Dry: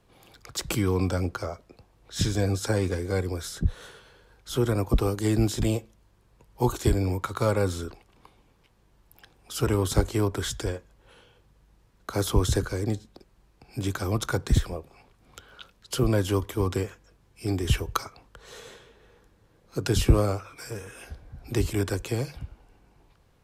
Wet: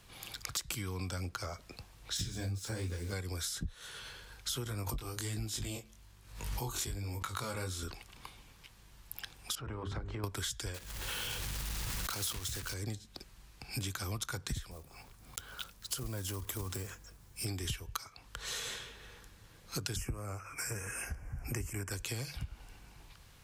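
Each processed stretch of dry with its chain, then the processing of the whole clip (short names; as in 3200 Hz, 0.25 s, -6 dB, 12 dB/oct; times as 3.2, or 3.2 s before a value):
2.17–3.13 low shelf 450 Hz +7.5 dB + sample gate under -38.5 dBFS + detuned doubles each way 47 cents
4.64–7.83 chorus 1.2 Hz, delay 18.5 ms, depth 4.5 ms + backwards sustainer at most 100 dB/s
9.55–10.24 LPF 1500 Hz + notches 50/100/150/200/250/300/350/400/450 Hz + compressor 2.5:1, threshold -40 dBFS
10.74–12.74 block floating point 3-bit + backwards sustainer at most 21 dB/s
14.71–17.46 block floating point 5-bit + bell 2900 Hz -7 dB 1.9 oct + compressor 2:1, threshold -33 dBFS
19.96–21.91 Butterworth band-stop 3800 Hz, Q 1.1 + high shelf 11000 Hz -5 dB
whole clip: passive tone stack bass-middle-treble 5-5-5; compressor 12:1, threshold -53 dBFS; gain +18 dB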